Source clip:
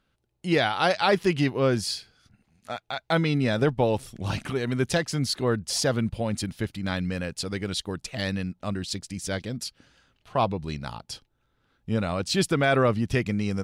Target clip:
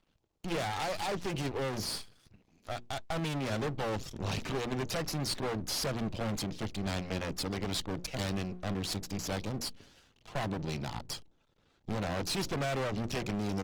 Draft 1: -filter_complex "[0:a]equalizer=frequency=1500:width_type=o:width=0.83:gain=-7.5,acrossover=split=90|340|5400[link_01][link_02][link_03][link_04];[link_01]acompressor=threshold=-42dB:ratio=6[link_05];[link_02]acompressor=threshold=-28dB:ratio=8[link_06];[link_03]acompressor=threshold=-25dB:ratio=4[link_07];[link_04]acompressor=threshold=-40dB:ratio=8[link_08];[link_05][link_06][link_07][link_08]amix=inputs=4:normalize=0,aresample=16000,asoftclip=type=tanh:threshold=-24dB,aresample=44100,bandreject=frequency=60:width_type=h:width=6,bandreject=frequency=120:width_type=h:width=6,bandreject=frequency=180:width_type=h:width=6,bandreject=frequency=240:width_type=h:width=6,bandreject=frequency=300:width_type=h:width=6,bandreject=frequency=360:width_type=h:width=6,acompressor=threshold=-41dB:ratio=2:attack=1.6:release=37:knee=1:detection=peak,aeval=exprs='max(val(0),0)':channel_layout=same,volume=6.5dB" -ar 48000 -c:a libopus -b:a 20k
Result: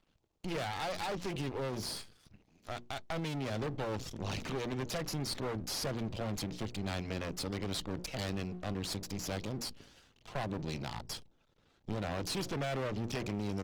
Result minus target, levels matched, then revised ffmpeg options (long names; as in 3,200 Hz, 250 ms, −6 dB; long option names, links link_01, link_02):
downward compressor: peak gain reduction +9 dB; soft clipping: distortion −6 dB
-filter_complex "[0:a]equalizer=frequency=1500:width_type=o:width=0.83:gain=-7.5,acrossover=split=90|340|5400[link_01][link_02][link_03][link_04];[link_01]acompressor=threshold=-42dB:ratio=6[link_05];[link_02]acompressor=threshold=-28dB:ratio=8[link_06];[link_03]acompressor=threshold=-25dB:ratio=4[link_07];[link_04]acompressor=threshold=-40dB:ratio=8[link_08];[link_05][link_06][link_07][link_08]amix=inputs=4:normalize=0,aresample=16000,asoftclip=type=tanh:threshold=-31dB,aresample=44100,bandreject=frequency=60:width_type=h:width=6,bandreject=frequency=120:width_type=h:width=6,bandreject=frequency=180:width_type=h:width=6,bandreject=frequency=240:width_type=h:width=6,bandreject=frequency=300:width_type=h:width=6,bandreject=frequency=360:width_type=h:width=6,aeval=exprs='max(val(0),0)':channel_layout=same,volume=6.5dB" -ar 48000 -c:a libopus -b:a 20k